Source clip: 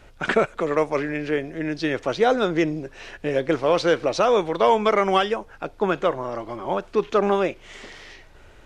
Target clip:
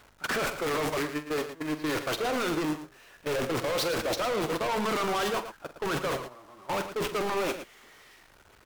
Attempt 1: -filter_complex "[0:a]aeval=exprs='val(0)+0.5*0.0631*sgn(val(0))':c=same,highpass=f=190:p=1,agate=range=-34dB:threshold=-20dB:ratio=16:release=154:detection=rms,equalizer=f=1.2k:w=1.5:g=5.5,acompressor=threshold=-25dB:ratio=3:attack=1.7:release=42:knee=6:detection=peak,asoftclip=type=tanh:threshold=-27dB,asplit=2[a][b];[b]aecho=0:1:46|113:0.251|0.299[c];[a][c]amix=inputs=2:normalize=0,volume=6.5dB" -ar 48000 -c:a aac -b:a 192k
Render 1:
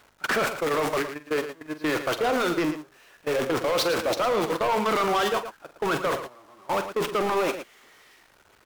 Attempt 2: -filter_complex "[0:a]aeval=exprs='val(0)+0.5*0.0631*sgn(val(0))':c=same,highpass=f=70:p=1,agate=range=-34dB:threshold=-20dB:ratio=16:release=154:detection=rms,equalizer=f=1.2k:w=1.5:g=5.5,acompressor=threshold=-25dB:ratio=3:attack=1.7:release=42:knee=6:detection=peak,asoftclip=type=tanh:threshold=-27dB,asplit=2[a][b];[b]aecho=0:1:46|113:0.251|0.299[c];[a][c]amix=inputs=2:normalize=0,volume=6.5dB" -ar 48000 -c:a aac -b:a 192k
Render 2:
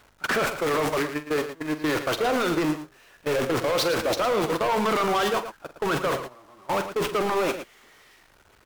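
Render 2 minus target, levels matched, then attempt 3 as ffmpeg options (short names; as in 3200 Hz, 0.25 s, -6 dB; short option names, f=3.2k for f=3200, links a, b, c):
soft clip: distortion -4 dB
-filter_complex "[0:a]aeval=exprs='val(0)+0.5*0.0631*sgn(val(0))':c=same,highpass=f=70:p=1,agate=range=-34dB:threshold=-20dB:ratio=16:release=154:detection=rms,equalizer=f=1.2k:w=1.5:g=5.5,acompressor=threshold=-25dB:ratio=3:attack=1.7:release=42:knee=6:detection=peak,asoftclip=type=tanh:threshold=-34dB,asplit=2[a][b];[b]aecho=0:1:46|113:0.251|0.299[c];[a][c]amix=inputs=2:normalize=0,volume=6.5dB" -ar 48000 -c:a aac -b:a 192k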